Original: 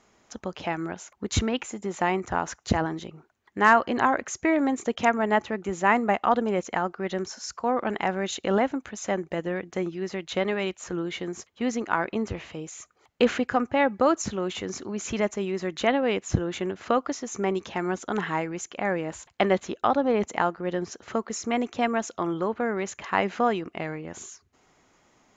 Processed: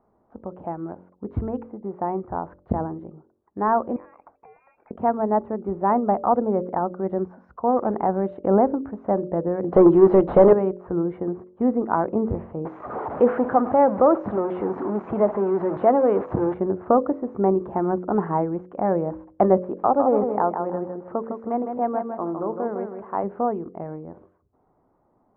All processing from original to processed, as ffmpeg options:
ffmpeg -i in.wav -filter_complex "[0:a]asettb=1/sr,asplit=3[link_01][link_02][link_03];[link_01]atrim=end=3.964[link_04];[link_02]atrim=start=3.96:end=4.91,asetpts=PTS-STARTPTS,afade=type=in:duration=0.004:curve=qsin,afade=type=out:start_time=0.946:duration=0.004:curve=qsin,aeval=exprs='clip(val(0),-1,0.0562)':channel_layout=same,acompressor=threshold=-38dB:ratio=6:attack=3.2:release=140:knee=1:detection=peak,lowpass=frequency=2300:width_type=q:width=0.5098,lowpass=frequency=2300:width_type=q:width=0.6013,lowpass=frequency=2300:width_type=q:width=0.9,lowpass=frequency=2300:width_type=q:width=2.563,afreqshift=-2700[link_05];[link_03]atrim=start=4.906[link_06];[link_04][link_05]acrossfade=duration=0.004:curve1=hsin:curve2=qsin[link_07];[link_07][link_06]acrossfade=duration=0.004:curve1=qsin:curve2=hsin,asettb=1/sr,asplit=3[link_08][link_09][link_10];[link_08]atrim=end=9.644[link_11];[link_09]atrim=start=9.64:end=10.53,asetpts=PTS-STARTPTS,afade=type=in:duration=0.004:curve=qsin,afade=type=out:start_time=0.886:duration=0.004:curve=qsin,highshelf=frequency=2900:width_type=q:width=1.5:gain=12.5,asplit=2[link_12][link_13];[link_13]highpass=frequency=720:poles=1,volume=30dB,asoftclip=type=tanh:threshold=-8.5dB[link_14];[link_12][link_14]amix=inputs=2:normalize=0,lowpass=frequency=1900:poles=1,volume=-6dB[link_15];[link_10]atrim=start=10.526[link_16];[link_11][link_15]acrossfade=duration=0.004:curve1=hsin:curve2=qsin[link_17];[link_17][link_16]acrossfade=duration=0.004:curve1=qsin:curve2=hsin,asettb=1/sr,asplit=3[link_18][link_19][link_20];[link_18]atrim=end=12.654[link_21];[link_19]atrim=start=12.65:end=16.54,asetpts=PTS-STARTPTS,afade=type=in:duration=0.004:curve=qsin,afade=type=out:start_time=3.886:duration=0.004:curve=qsin,aeval=exprs='val(0)+0.5*0.0631*sgn(val(0))':channel_layout=same,highpass=frequency=460:poles=1[link_22];[link_20]atrim=start=16.536[link_23];[link_21][link_22]acrossfade=duration=0.004:curve1=hsin:curve2=qsin[link_24];[link_24][link_23]acrossfade=duration=0.004:curve1=qsin:curve2=hsin,asettb=1/sr,asplit=3[link_25][link_26][link_27];[link_25]atrim=end=19.624[link_28];[link_26]atrim=start=19.62:end=23.24,asetpts=PTS-STARTPTS,afade=type=in:duration=0.004:curve=qsin,afade=type=out:start_time=3.616:duration=0.004:curve=qsin,lowshelf=frequency=160:gain=-10.5,aecho=1:1:157|314|471|628:0.501|0.15|0.0451|0.0135,atrim=end_sample=159642[link_29];[link_27]atrim=start=23.236[link_30];[link_28][link_29]acrossfade=duration=0.004:curve1=hsin:curve2=qsin[link_31];[link_31][link_30]acrossfade=duration=0.004:curve1=qsin:curve2=hsin,lowpass=frequency=1000:width=0.5412,lowpass=frequency=1000:width=1.3066,bandreject=frequency=45.31:width_type=h:width=4,bandreject=frequency=90.62:width_type=h:width=4,bandreject=frequency=135.93:width_type=h:width=4,bandreject=frequency=181.24:width_type=h:width=4,bandreject=frequency=226.55:width_type=h:width=4,bandreject=frequency=271.86:width_type=h:width=4,bandreject=frequency=317.17:width_type=h:width=4,bandreject=frequency=362.48:width_type=h:width=4,bandreject=frequency=407.79:width_type=h:width=4,bandreject=frequency=453.1:width_type=h:width=4,bandreject=frequency=498.41:width_type=h:width=4,bandreject=frequency=543.72:width_type=h:width=4,bandreject=frequency=589.03:width_type=h:width=4,dynaudnorm=framelen=960:gausssize=13:maxgain=9dB" out.wav

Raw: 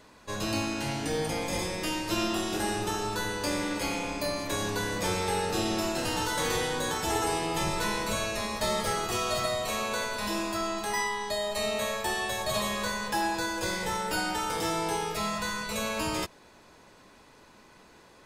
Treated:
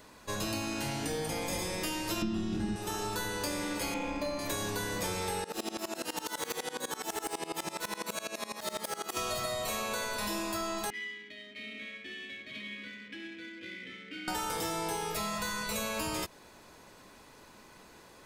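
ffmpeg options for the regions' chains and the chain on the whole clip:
ffmpeg -i in.wav -filter_complex "[0:a]asettb=1/sr,asplit=3[link_01][link_02][link_03];[link_01]atrim=end=2.224[link_04];[link_02]atrim=start=2.22:end=2.76,asetpts=PTS-STARTPTS,afade=type=in:duration=0.004:curve=qsin,afade=type=out:start_time=0.536:duration=0.004:curve=qsin,lowpass=5300,lowshelf=frequency=340:width_type=q:width=1.5:gain=14[link_05];[link_03]atrim=start=2.756[link_06];[link_04][link_05]acrossfade=duration=0.004:curve1=hsin:curve2=qsin[link_07];[link_07][link_06]acrossfade=duration=0.004:curve1=qsin:curve2=hsin,asettb=1/sr,asplit=3[link_08][link_09][link_10];[link_08]atrim=end=3.944[link_11];[link_09]atrim=start=3.94:end=4.39,asetpts=PTS-STARTPTS,afade=type=in:duration=0.004:curve=qsin,afade=type=out:start_time=0.446:duration=0.004:curve=qsin,highshelf=frequency=11000:gain=9,adynamicsmooth=sensitivity=2.5:basefreq=2800,aecho=1:1:3.7:0.53,atrim=end_sample=19845[link_12];[link_10]atrim=start=4.386[link_13];[link_11][link_12]acrossfade=duration=0.004:curve1=hsin:curve2=qsin[link_14];[link_14][link_13]acrossfade=duration=0.004:curve1=qsin:curve2=hsin,asettb=1/sr,asplit=3[link_15][link_16][link_17];[link_15]atrim=end=5.444[link_18];[link_16]atrim=start=5.44:end=9.17,asetpts=PTS-STARTPTS,afade=type=in:duration=0.004:curve=qsin,afade=type=out:start_time=3.726:duration=0.004:curve=qsin,highpass=frequency=190:width=0.5412,highpass=frequency=190:width=1.3066,aeval=exprs='0.075*(abs(mod(val(0)/0.075+3,4)-2)-1)':channel_layout=same,aeval=exprs='val(0)*pow(10,-22*if(lt(mod(-12*n/s,1),2*abs(-12)/1000),1-mod(-12*n/s,1)/(2*abs(-12)/1000),(mod(-12*n/s,1)-2*abs(-12)/1000)/(1-2*abs(-12)/1000))/20)':channel_layout=same[link_19];[link_17]atrim=start=9.166[link_20];[link_18][link_19]acrossfade=duration=0.004:curve1=hsin:curve2=qsin[link_21];[link_21][link_20]acrossfade=duration=0.004:curve1=qsin:curve2=hsin,asettb=1/sr,asplit=3[link_22][link_23][link_24];[link_22]atrim=end=10.904[link_25];[link_23]atrim=start=10.9:end=14.28,asetpts=PTS-STARTPTS,afade=type=in:duration=0.004:curve=qsin,afade=type=out:start_time=3.376:duration=0.004:curve=qsin,equalizer=frequency=2000:width_type=o:width=1.7:gain=7,adynamicsmooth=sensitivity=5:basefreq=920,asplit=3[link_26][link_27][link_28];[link_26]bandpass=frequency=270:width_type=q:width=8,volume=0dB[link_29];[link_27]bandpass=frequency=2290:width_type=q:width=8,volume=-6dB[link_30];[link_28]bandpass=frequency=3010:width_type=q:width=8,volume=-9dB[link_31];[link_29][link_30][link_31]amix=inputs=3:normalize=0[link_32];[link_24]atrim=start=14.276[link_33];[link_25][link_32]acrossfade=duration=0.004:curve1=hsin:curve2=qsin[link_34];[link_34][link_33]acrossfade=duration=0.004:curve1=qsin:curve2=hsin,highshelf=frequency=11000:gain=11,acompressor=threshold=-31dB:ratio=6" out.wav

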